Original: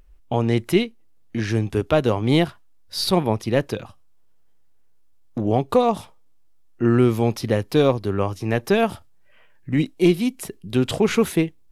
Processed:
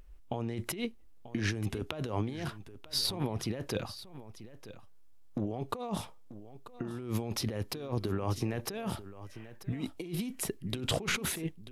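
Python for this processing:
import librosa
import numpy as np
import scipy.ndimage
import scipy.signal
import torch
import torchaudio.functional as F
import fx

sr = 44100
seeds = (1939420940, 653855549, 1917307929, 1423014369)

p1 = fx.over_compress(x, sr, threshold_db=-27.0, ratio=-1.0)
p2 = p1 + fx.echo_single(p1, sr, ms=938, db=-15.0, dry=0)
y = p2 * librosa.db_to_amplitude(-8.0)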